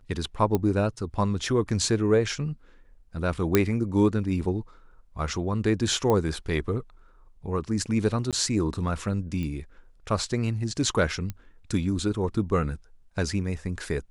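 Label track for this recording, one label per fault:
0.550000	0.550000	pop -12 dBFS
3.550000	3.550000	pop -5 dBFS
6.100000	6.100000	pop -13 dBFS
8.310000	8.330000	dropout 17 ms
9.430000	9.430000	pop -22 dBFS
11.300000	11.300000	pop -19 dBFS

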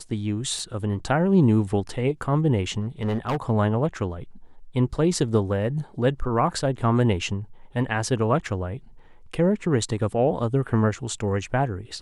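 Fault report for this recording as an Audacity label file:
0.590000	0.590000	dropout 3.4 ms
2.810000	3.370000	clipped -21 dBFS

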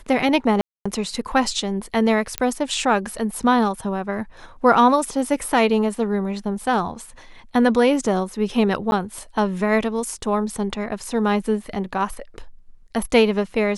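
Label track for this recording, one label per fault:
0.610000	0.850000	dropout 245 ms
2.380000	2.380000	pop -5 dBFS
8.910000	8.920000	dropout

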